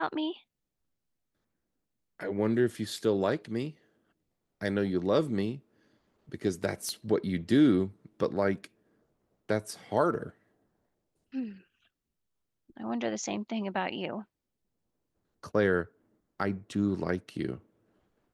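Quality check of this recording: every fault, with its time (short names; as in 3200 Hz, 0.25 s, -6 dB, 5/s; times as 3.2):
6.89 pop -23 dBFS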